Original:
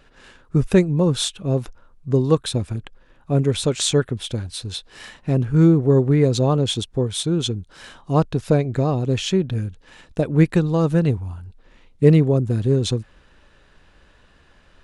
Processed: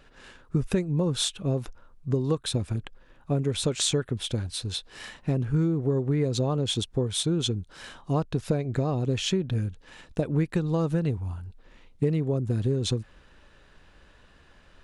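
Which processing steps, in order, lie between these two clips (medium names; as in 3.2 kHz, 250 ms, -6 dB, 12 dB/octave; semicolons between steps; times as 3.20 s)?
compression 10:1, threshold -19 dBFS, peak gain reduction 12.5 dB; trim -2 dB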